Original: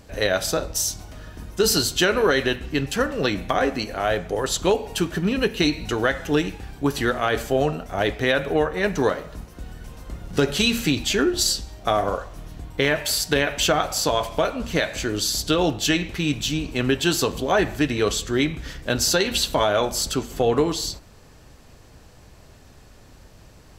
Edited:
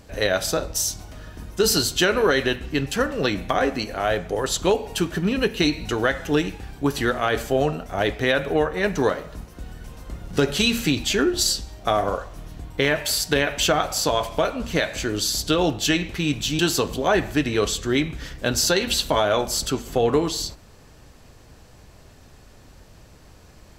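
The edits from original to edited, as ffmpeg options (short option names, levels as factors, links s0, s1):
-filter_complex "[0:a]asplit=2[s0][s1];[s0]atrim=end=16.592[s2];[s1]atrim=start=17.028[s3];[s2][s3]acrossfade=d=0.004:c1=hsin:c2=hsin"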